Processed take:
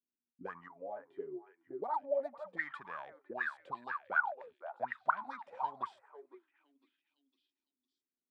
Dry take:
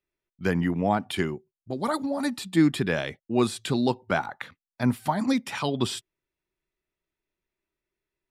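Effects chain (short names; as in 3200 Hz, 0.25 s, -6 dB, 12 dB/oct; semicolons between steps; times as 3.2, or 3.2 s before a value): Wiener smoothing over 9 samples; 0.68–1.82 resonator 140 Hz, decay 0.17 s, harmonics all, mix 90%; on a send: delay with a stepping band-pass 0.506 s, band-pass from 1300 Hz, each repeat 0.7 oct, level -2 dB; on the sum: dynamic EQ 370 Hz, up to -7 dB, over -36 dBFS, Q 0.75; auto-wah 240–1900 Hz, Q 22, up, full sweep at -21.5 dBFS; gain +9.5 dB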